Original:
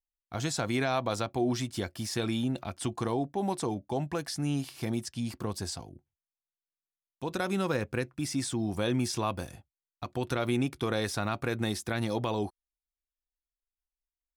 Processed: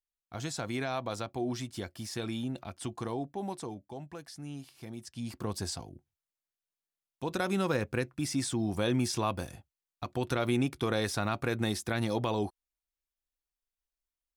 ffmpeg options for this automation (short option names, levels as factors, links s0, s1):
-af "volume=2.11,afade=t=out:st=3.31:d=0.64:silence=0.473151,afade=t=in:st=4.96:d=0.6:silence=0.266073"